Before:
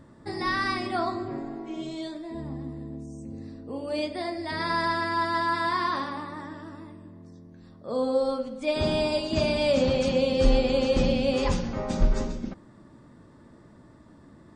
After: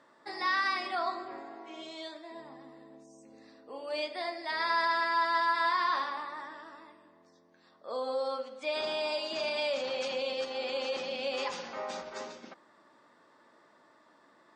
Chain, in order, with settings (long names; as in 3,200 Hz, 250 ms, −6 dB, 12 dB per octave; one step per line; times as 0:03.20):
brickwall limiter −19 dBFS, peak gain reduction 10 dB
band-pass filter 700–5,900 Hz